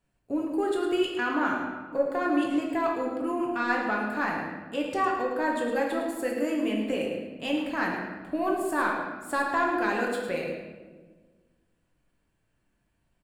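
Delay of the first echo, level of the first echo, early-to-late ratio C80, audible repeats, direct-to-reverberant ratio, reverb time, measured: 108 ms, −9.5 dB, 3.5 dB, 1, −2.0 dB, 1.4 s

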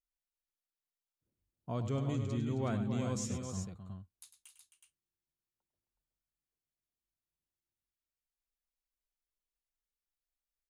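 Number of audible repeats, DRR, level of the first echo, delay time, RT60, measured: 3, no reverb audible, −10.0 dB, 101 ms, no reverb audible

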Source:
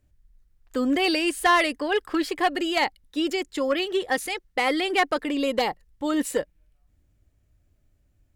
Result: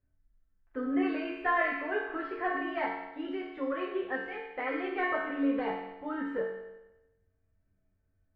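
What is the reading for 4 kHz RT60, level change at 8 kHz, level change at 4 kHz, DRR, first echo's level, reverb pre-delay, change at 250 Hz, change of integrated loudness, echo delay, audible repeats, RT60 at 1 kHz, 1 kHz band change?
1.0 s, below −40 dB, −21.5 dB, −6.0 dB, no echo audible, 5 ms, −7.0 dB, −8.0 dB, no echo audible, no echo audible, 1.0 s, −8.5 dB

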